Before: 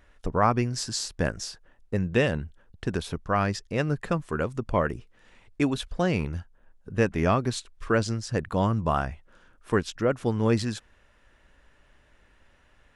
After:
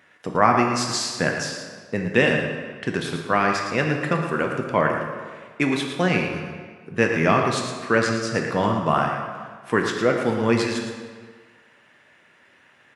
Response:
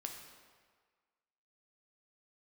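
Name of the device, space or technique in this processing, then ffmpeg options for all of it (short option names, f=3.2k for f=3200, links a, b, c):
PA in a hall: -filter_complex "[0:a]highpass=f=130:w=0.5412,highpass=f=130:w=1.3066,equalizer=f=2.1k:t=o:w=1.1:g=6.5,aecho=1:1:113:0.355[a];[1:a]atrim=start_sample=2205[b];[a][b]afir=irnorm=-1:irlink=0,volume=6.5dB"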